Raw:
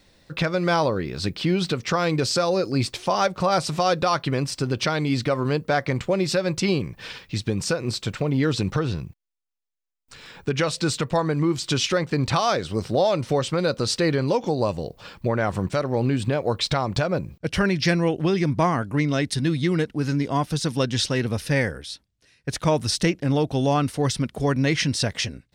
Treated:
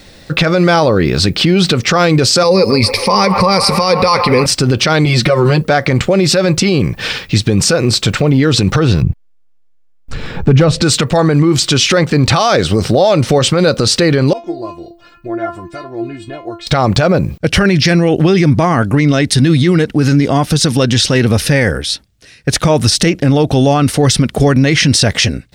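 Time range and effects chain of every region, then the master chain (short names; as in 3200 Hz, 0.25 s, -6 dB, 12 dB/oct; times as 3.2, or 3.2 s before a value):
2.43–4.46 ripple EQ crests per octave 0.89, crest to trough 15 dB + band-limited delay 0.136 s, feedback 74%, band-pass 1200 Hz, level -12 dB
5.05–5.62 notch 6600 Hz, Q 23 + compressor 3:1, threshold -24 dBFS + comb 5.5 ms, depth 89%
9.02–10.82 tilt -3.5 dB/oct + hard clip -10.5 dBFS
14.33–16.67 high shelf 2600 Hz -10.5 dB + metallic resonator 340 Hz, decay 0.24 s, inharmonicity 0.002
whole clip: notch 990 Hz, Q 11; maximiser +19 dB; gain -1 dB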